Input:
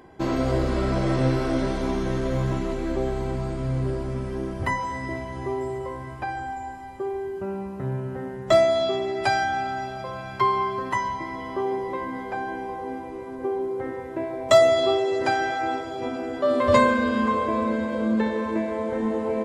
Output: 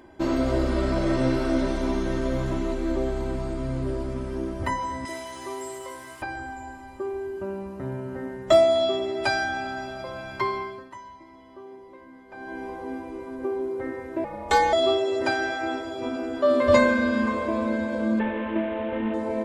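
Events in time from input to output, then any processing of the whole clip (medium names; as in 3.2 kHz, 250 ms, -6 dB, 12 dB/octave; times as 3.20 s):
5.05–6.22 s: tilt EQ +4.5 dB/octave
10.49–12.67 s: dip -15.5 dB, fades 0.39 s
14.24–14.73 s: ring modulator 180 Hz
18.19–19.14 s: CVSD coder 16 kbps
whole clip: comb 3.3 ms, depth 51%; trim -1.5 dB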